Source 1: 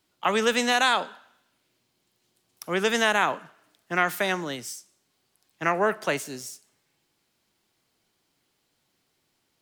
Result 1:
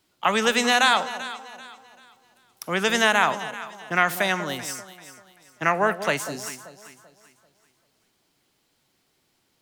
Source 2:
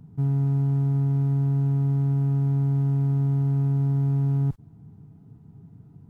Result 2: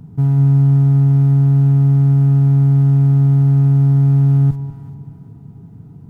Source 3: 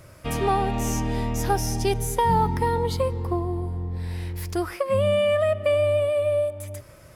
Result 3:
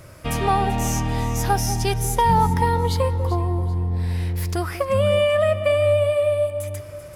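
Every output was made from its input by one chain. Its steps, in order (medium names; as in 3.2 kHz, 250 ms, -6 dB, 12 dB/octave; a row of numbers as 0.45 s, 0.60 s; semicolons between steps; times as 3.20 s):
dynamic bell 370 Hz, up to -6 dB, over -39 dBFS, Q 1.5; on a send: echo whose repeats swap between lows and highs 194 ms, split 870 Hz, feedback 58%, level -10 dB; on the sum: peak normalisation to -6 dBFS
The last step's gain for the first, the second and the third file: +3.5 dB, +10.0 dB, +4.0 dB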